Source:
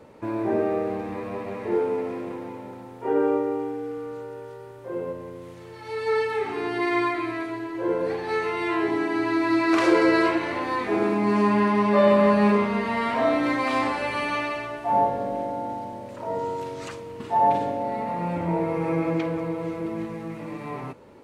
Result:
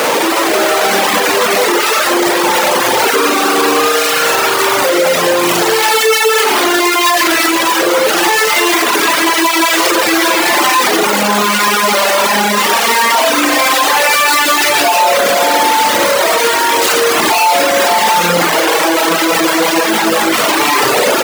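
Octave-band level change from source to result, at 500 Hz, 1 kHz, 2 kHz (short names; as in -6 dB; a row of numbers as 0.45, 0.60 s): +11.5, +15.5, +19.5 dB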